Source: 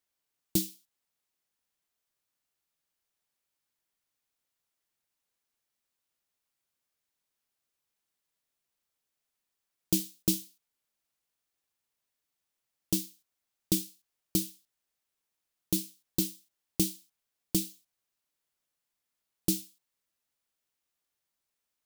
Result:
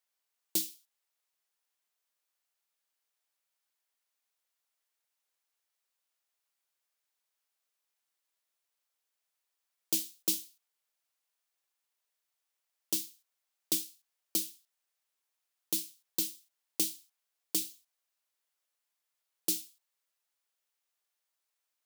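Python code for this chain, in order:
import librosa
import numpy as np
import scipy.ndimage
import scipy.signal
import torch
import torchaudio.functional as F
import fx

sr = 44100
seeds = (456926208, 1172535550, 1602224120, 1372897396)

y = scipy.signal.sosfilt(scipy.signal.butter(2, 520.0, 'highpass', fs=sr, output='sos'), x)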